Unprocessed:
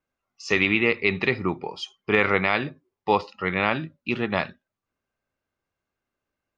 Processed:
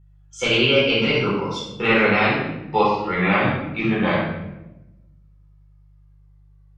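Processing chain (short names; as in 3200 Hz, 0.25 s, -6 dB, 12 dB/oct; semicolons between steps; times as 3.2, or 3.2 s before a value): speed glide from 123% -> 71%; shoebox room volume 380 m³, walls mixed, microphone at 4.3 m; buzz 50 Hz, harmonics 3, -45 dBFS -6 dB/oct; gain -6.5 dB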